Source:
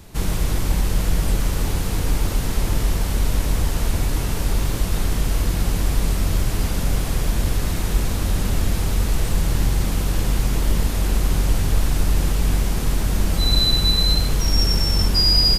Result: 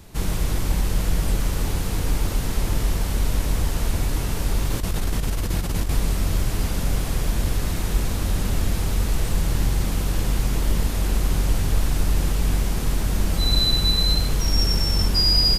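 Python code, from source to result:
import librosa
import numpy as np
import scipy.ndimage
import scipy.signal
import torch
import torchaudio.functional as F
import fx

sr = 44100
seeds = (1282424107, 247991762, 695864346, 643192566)

y = fx.over_compress(x, sr, threshold_db=-19.0, ratio=-0.5, at=(4.67, 5.97))
y = y * 10.0 ** (-2.0 / 20.0)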